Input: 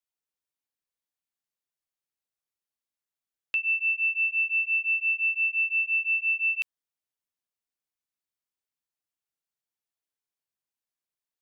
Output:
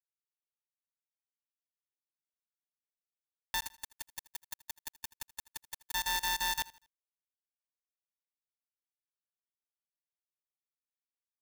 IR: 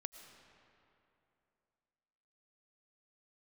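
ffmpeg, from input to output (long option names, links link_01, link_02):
-filter_complex "[0:a]lowpass=frequency=2400:width=0.5412,lowpass=frequency=2400:width=1.3066,alimiter=level_in=5dB:limit=-24dB:level=0:latency=1:release=118,volume=-5dB,asplit=3[link_01][link_02][link_03];[link_01]afade=type=out:start_time=3.61:duration=0.02[link_04];[link_02]acompressor=threshold=-41dB:ratio=3,afade=type=in:start_time=3.61:duration=0.02,afade=type=out:start_time=5.94:duration=0.02[link_05];[link_03]afade=type=in:start_time=5.94:duration=0.02[link_06];[link_04][link_05][link_06]amix=inputs=3:normalize=0,acrusher=bits=5:mix=0:aa=0.000001,tremolo=f=180:d=0.571,aeval=exprs='0.0335*(cos(1*acos(clip(val(0)/0.0335,-1,1)))-cos(1*PI/2))+0.0133*(cos(2*acos(clip(val(0)/0.0335,-1,1)))-cos(2*PI/2))+0.00596*(cos(6*acos(clip(val(0)/0.0335,-1,1)))-cos(6*PI/2))':channel_layout=same,aecho=1:1:80|160|240:0.1|0.037|0.0137,aeval=exprs='val(0)*sgn(sin(2*PI*900*n/s))':channel_layout=same"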